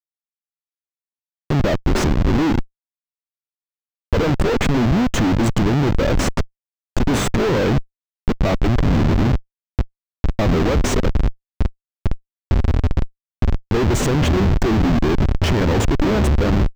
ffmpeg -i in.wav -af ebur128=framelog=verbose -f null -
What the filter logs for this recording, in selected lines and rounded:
Integrated loudness:
  I:         -19.4 LUFS
  Threshold: -29.7 LUFS
Loudness range:
  LRA:         4.0 LU
  Threshold: -40.4 LUFS
  LRA low:   -22.8 LUFS
  LRA high:  -18.8 LUFS